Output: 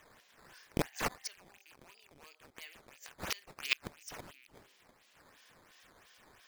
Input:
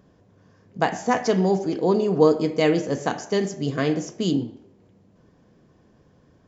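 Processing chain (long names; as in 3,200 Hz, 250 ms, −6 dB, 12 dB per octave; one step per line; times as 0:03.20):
loose part that buzzes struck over −34 dBFS, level −27 dBFS
0:03.44–0:03.87: compressor whose output falls as the input rises −30 dBFS, ratio −0.5
gate with flip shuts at −19 dBFS, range −33 dB
sine wavefolder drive 4 dB, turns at −13.5 dBFS
flat-topped band-pass 4,000 Hz, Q 0.77
sample-and-hold swept by an LFO 9×, swing 160% 2.9 Hz
wow of a warped record 78 rpm, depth 100 cents
level +6 dB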